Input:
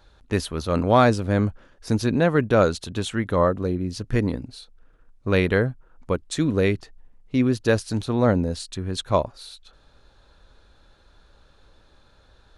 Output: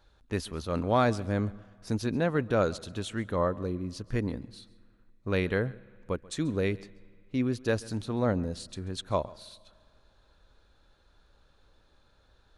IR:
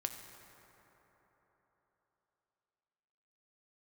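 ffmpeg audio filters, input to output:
-filter_complex "[0:a]asplit=2[a][b];[1:a]atrim=start_sample=2205,asetrate=79380,aresample=44100,adelay=136[c];[b][c]afir=irnorm=-1:irlink=0,volume=-15dB[d];[a][d]amix=inputs=2:normalize=0,volume=-8dB"

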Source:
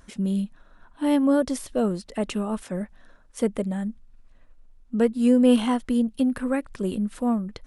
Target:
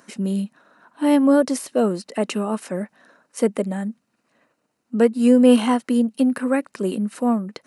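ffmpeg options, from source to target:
-filter_complex "[0:a]bandreject=f=3.4k:w=7.4,acrossover=split=170|1700[a][b][c];[a]acrusher=bits=3:mix=0:aa=0.5[d];[d][b][c]amix=inputs=3:normalize=0,volume=5.5dB"

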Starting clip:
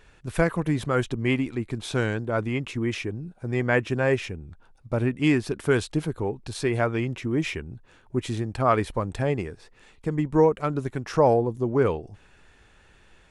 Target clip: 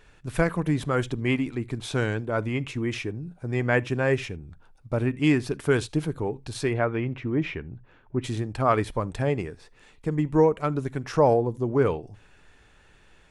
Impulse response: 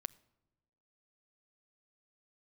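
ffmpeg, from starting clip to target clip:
-filter_complex "[0:a]asettb=1/sr,asplit=3[a][b][c];[a]atrim=end=6.734[d];[b]atrim=start=6.73:end=8.24,asetpts=PTS-STARTPTS,afade=t=in:d=0.004:c=qsin,afade=t=out:st=1.506:d=0.004:c=qsin,lowpass=2.6k[e];[c]atrim=start=8.236[f];[d][e]acrossfade=d=0.004:c1=hsin:c2=qsin[g];[g][f]acrossfade=d=0.004:c1=qsin:c2=hsin[h];[1:a]atrim=start_sample=2205,atrim=end_sample=3969[i];[h][i]afir=irnorm=-1:irlink=0,volume=2dB"

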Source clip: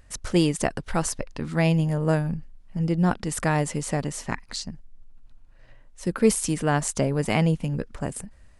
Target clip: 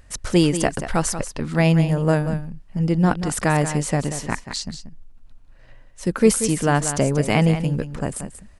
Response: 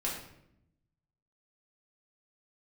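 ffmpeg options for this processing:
-af "aecho=1:1:184:0.299,volume=4dB"

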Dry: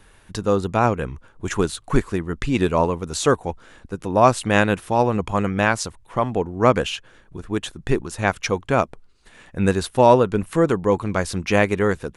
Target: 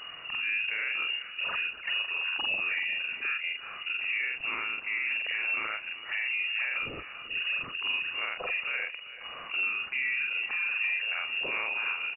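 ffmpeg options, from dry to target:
-af "afftfilt=real='re':imag='-im':win_size=4096:overlap=0.75,adynamicequalizer=threshold=0.00631:dfrequency=1100:dqfactor=6.3:tfrequency=1100:tqfactor=6.3:attack=5:release=100:ratio=0.375:range=3.5:mode=cutabove:tftype=bell,acompressor=threshold=-31dB:ratio=3,alimiter=level_in=6.5dB:limit=-24dB:level=0:latency=1:release=41,volume=-6.5dB,acompressor=mode=upward:threshold=-43dB:ratio=2.5,aecho=1:1:387|774|1161:0.188|0.0659|0.0231,lowpass=f=2.5k:t=q:w=0.5098,lowpass=f=2.5k:t=q:w=0.6013,lowpass=f=2.5k:t=q:w=0.9,lowpass=f=2.5k:t=q:w=2.563,afreqshift=-2900,volume=7.5dB"

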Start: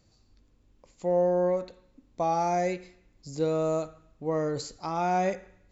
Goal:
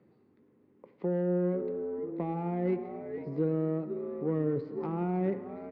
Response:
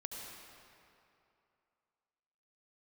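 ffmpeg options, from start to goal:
-filter_complex "[0:a]asplit=5[a][b][c][d][e];[b]adelay=485,afreqshift=-98,volume=-16dB[f];[c]adelay=970,afreqshift=-196,volume=-22.2dB[g];[d]adelay=1455,afreqshift=-294,volume=-28.4dB[h];[e]adelay=1940,afreqshift=-392,volume=-34.6dB[i];[a][f][g][h][i]amix=inputs=5:normalize=0,asoftclip=type=tanh:threshold=-20.5dB,acrossover=split=300[j][k];[k]acompressor=threshold=-46dB:ratio=3[l];[j][l]amix=inputs=2:normalize=0,highpass=f=150:w=0.5412,highpass=f=150:w=1.3066,equalizer=f=400:t=q:w=4:g=8,equalizer=f=650:t=q:w=4:g=-6,equalizer=f=2k:t=q:w=4:g=7,lowpass=f=4.1k:w=0.5412,lowpass=f=4.1k:w=1.3066,adynamicsmooth=sensitivity=2:basefreq=1.2k,asplit=2[m][n];[1:a]atrim=start_sample=2205[o];[n][o]afir=irnorm=-1:irlink=0,volume=-9.5dB[p];[m][p]amix=inputs=2:normalize=0,volume=4.5dB"

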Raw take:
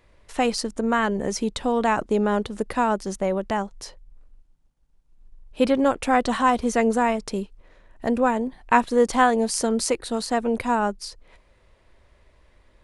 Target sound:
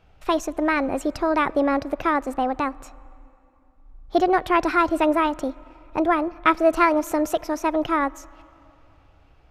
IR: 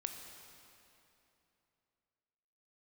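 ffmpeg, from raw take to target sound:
-filter_complex "[0:a]lowpass=f=1.9k:p=1,asetrate=59535,aresample=44100,asplit=2[a][b];[1:a]atrim=start_sample=2205,highshelf=f=5.1k:g=-10.5[c];[b][c]afir=irnorm=-1:irlink=0,volume=-13.5dB[d];[a][d]amix=inputs=2:normalize=0"

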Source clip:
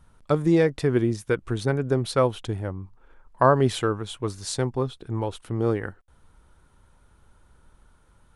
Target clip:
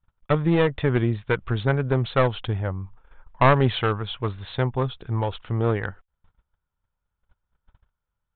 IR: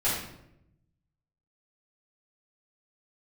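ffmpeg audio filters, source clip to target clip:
-af "agate=range=-29dB:threshold=-50dB:ratio=16:detection=peak,equalizer=f=310:t=o:w=1.2:g=-8.5,aresample=8000,aeval=exprs='clip(val(0),-1,0.0531)':c=same,aresample=44100,volume=5.5dB"

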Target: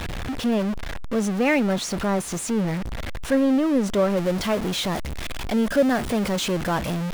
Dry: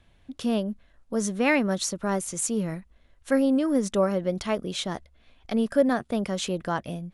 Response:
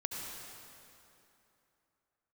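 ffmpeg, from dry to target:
-af "aeval=exprs='val(0)+0.5*0.0708*sgn(val(0))':c=same,asetnsamples=n=441:p=0,asendcmd='4.17 highshelf g -4.5',highshelf=f=4.9k:g=-11"

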